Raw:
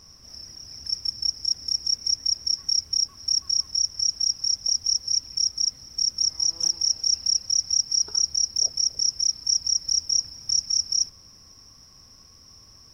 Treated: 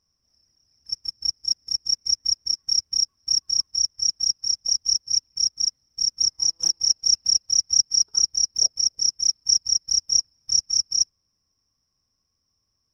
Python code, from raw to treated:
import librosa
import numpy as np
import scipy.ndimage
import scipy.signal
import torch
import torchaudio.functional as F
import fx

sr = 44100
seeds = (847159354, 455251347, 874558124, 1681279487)

y = fx.upward_expand(x, sr, threshold_db=-39.0, expansion=2.5)
y = F.gain(torch.from_numpy(y), 5.0).numpy()